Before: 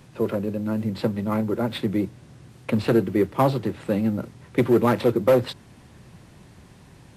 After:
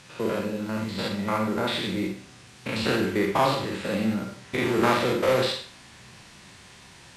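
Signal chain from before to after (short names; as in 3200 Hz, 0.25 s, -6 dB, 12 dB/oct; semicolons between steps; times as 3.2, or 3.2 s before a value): stepped spectrum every 0.1 s; LPF 8100 Hz 12 dB/oct; tilt shelf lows -8.5 dB, about 900 Hz; Schroeder reverb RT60 0.45 s, combs from 32 ms, DRR 3 dB; in parallel at -9 dB: one-sided clip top -25 dBFS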